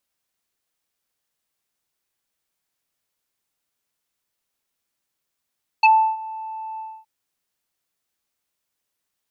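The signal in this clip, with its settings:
subtractive voice square A5 24 dB per octave, low-pass 1,500 Hz, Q 3.2, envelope 1.5 octaves, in 0.06 s, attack 5.4 ms, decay 0.33 s, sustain −20.5 dB, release 0.26 s, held 0.96 s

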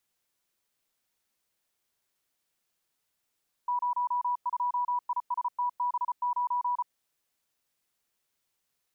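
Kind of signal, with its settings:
Morse code "02ISTB9" 34 words per minute 979 Hz −25.5 dBFS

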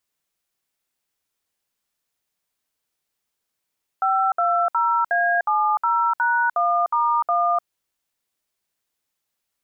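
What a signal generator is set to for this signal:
touch tones "520A70#1*1", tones 300 ms, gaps 63 ms, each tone −19.5 dBFS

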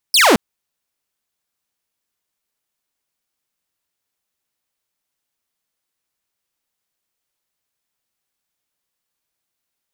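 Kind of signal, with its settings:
single falling chirp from 5,500 Hz, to 190 Hz, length 0.22 s saw, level −6 dB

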